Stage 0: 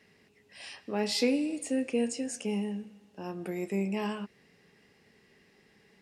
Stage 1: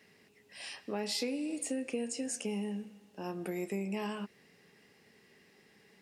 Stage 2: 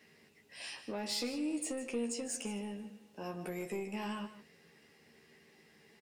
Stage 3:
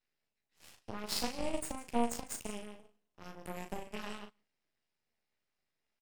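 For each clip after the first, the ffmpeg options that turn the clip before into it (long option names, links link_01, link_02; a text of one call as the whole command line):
ffmpeg -i in.wav -af "highpass=frequency=120:poles=1,highshelf=frequency=10000:gain=7.5,acompressor=threshold=-32dB:ratio=6" out.wav
ffmpeg -i in.wav -filter_complex "[0:a]asoftclip=type=tanh:threshold=-29dB,asplit=2[link_01][link_02];[link_02]adelay=13,volume=-4.5dB[link_03];[link_01][link_03]amix=inputs=2:normalize=0,aecho=1:1:153:0.224,volume=-1.5dB" out.wav
ffmpeg -i in.wav -filter_complex "[0:a]aeval=exprs='0.0473*(cos(1*acos(clip(val(0)/0.0473,-1,1)))-cos(1*PI/2))+0.0119*(cos(2*acos(clip(val(0)/0.0473,-1,1)))-cos(2*PI/2))+0.015*(cos(3*acos(clip(val(0)/0.0473,-1,1)))-cos(3*PI/2))+0.00119*(cos(4*acos(clip(val(0)/0.0473,-1,1)))-cos(4*PI/2))+0.000531*(cos(7*acos(clip(val(0)/0.0473,-1,1)))-cos(7*PI/2))':channel_layout=same,acrossover=split=2800[link_01][link_02];[link_01]aeval=exprs='abs(val(0))':channel_layout=same[link_03];[link_03][link_02]amix=inputs=2:normalize=0,asplit=2[link_04][link_05];[link_05]adelay=38,volume=-7dB[link_06];[link_04][link_06]amix=inputs=2:normalize=0,volume=6.5dB" out.wav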